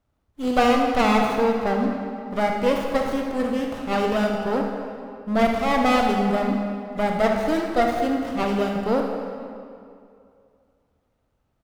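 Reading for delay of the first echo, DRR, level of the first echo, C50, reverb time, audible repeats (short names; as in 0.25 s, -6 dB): 75 ms, 1.0 dB, -11.0 dB, 2.0 dB, 2.4 s, 1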